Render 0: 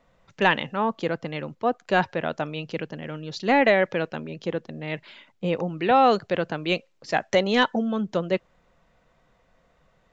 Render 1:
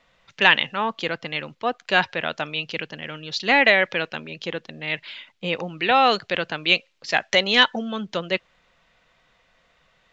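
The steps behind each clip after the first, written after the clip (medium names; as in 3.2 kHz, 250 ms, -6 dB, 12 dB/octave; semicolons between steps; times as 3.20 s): peaking EQ 3.2 kHz +15 dB 2.7 oct; trim -4.5 dB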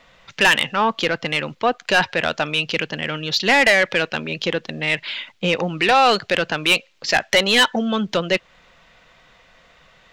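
in parallel at -1.5 dB: compression, threshold -28 dBFS, peak gain reduction 17 dB; on the sum: saturation -12.5 dBFS, distortion -10 dB; trim +4.5 dB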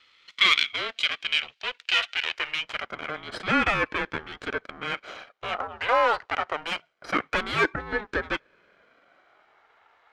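comb filter that takes the minimum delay 1.1 ms; band-pass sweep 2.9 kHz -> 1.1 kHz, 2.23–2.90 s; ring modulator with a swept carrier 430 Hz, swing 45%, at 0.25 Hz; trim +4 dB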